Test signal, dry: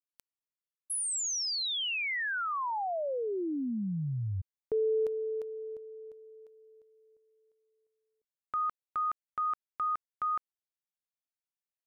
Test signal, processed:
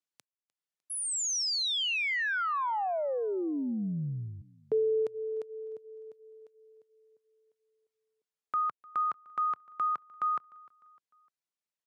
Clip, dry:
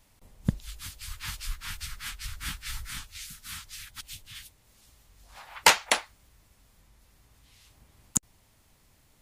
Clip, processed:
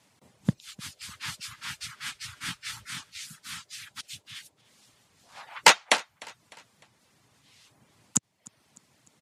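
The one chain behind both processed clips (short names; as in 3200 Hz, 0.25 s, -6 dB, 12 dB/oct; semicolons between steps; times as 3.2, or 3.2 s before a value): HPF 120 Hz 24 dB/oct; reverb removal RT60 0.55 s; LPF 9000 Hz 12 dB/oct; on a send: feedback echo 0.302 s, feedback 46%, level -23.5 dB; on the sum: gain +2.5 dB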